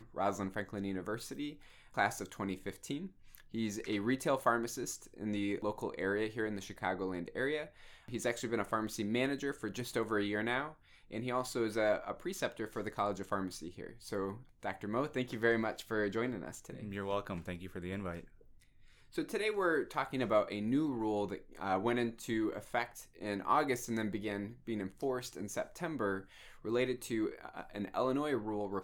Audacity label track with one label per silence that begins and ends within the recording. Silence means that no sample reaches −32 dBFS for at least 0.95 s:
18.110000	19.180000	silence